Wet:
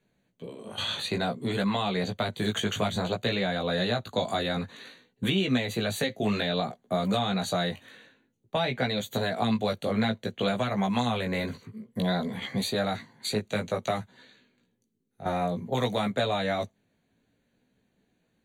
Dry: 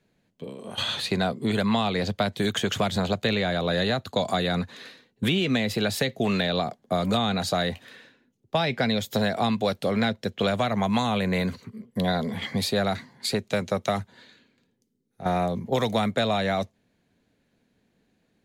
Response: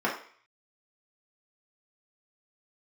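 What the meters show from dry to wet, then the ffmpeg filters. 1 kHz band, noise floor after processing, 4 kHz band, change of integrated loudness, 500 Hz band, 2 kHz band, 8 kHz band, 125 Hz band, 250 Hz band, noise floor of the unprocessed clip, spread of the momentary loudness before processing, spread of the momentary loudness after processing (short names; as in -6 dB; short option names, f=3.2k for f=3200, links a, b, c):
-3.0 dB, -74 dBFS, -3.0 dB, -3.0 dB, -3.0 dB, -3.0 dB, -3.0 dB, -3.0 dB, -3.0 dB, -71 dBFS, 6 LU, 7 LU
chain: -af "flanger=delay=15.5:depth=3.5:speed=0.56,asuperstop=centerf=5200:order=20:qfactor=5.1"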